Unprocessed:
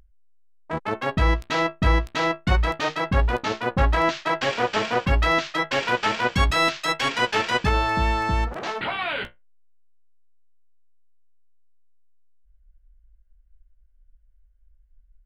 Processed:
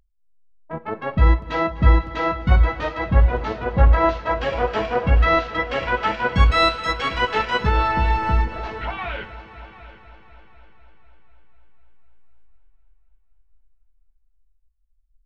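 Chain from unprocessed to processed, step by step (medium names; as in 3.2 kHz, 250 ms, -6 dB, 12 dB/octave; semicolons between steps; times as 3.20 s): multi-head delay 248 ms, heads all three, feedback 61%, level -15.5 dB; Schroeder reverb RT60 0.75 s, combs from 31 ms, DRR 11 dB; spectral contrast expander 1.5:1; trim +4 dB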